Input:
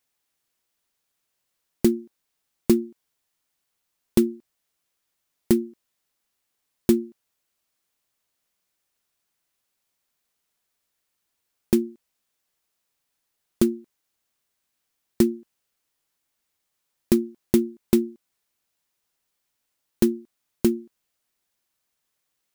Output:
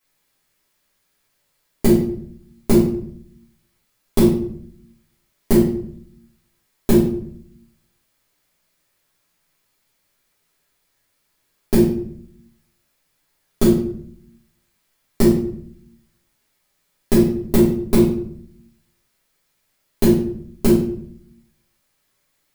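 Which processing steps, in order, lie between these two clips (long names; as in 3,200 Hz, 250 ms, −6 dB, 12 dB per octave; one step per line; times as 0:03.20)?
downward compressor, threshold −18 dBFS, peak gain reduction 6.5 dB
convolution reverb RT60 0.65 s, pre-delay 3 ms, DRR −12 dB
level −1 dB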